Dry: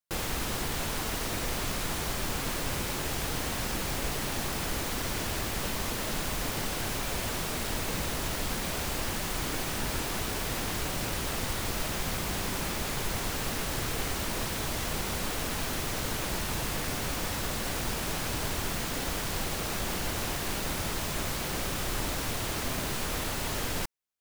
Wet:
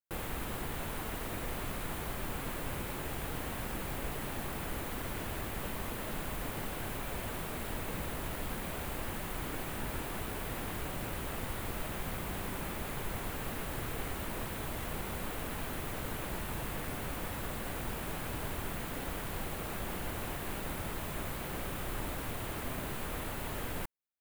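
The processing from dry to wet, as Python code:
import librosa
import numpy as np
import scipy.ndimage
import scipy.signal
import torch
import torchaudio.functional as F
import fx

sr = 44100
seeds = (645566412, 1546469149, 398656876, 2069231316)

y = fx.peak_eq(x, sr, hz=5500.0, db=-12.5, octaves=1.2)
y = F.gain(torch.from_numpy(y), -5.0).numpy()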